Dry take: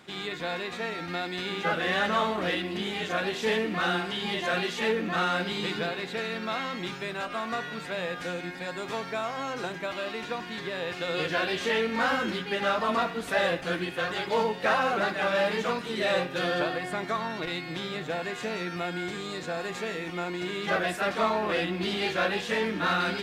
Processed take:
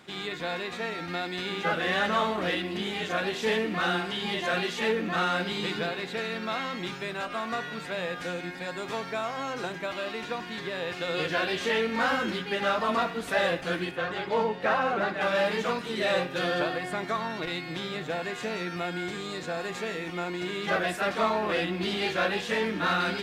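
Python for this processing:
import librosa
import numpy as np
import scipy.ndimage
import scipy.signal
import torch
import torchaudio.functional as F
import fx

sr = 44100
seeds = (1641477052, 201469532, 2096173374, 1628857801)

y = fx.high_shelf(x, sr, hz=4100.0, db=-11.5, at=(13.91, 15.21))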